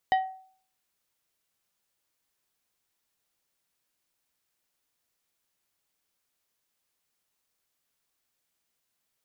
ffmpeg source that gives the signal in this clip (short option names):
-f lavfi -i "aevalsrc='0.133*pow(10,-3*t/0.52)*sin(2*PI*757*t)+0.0531*pow(10,-3*t/0.274)*sin(2*PI*1892.5*t)+0.0211*pow(10,-3*t/0.197)*sin(2*PI*3028*t)+0.00841*pow(10,-3*t/0.169)*sin(2*PI*3785*t)+0.00335*pow(10,-3*t/0.14)*sin(2*PI*4920.5*t)':d=0.89:s=44100"